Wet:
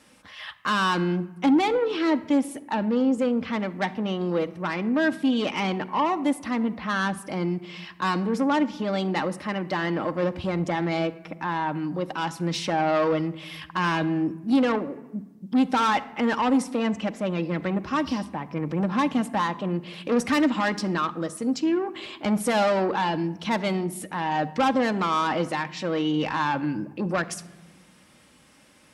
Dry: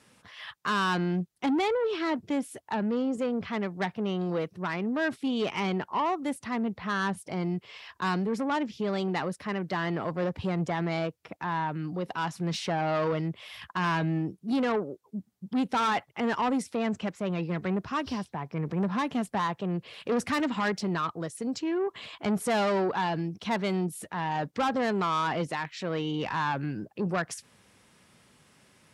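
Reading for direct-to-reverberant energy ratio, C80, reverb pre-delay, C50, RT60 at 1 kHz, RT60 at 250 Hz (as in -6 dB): 7.0 dB, 19.0 dB, 3 ms, 17.0 dB, 1.0 s, 1.8 s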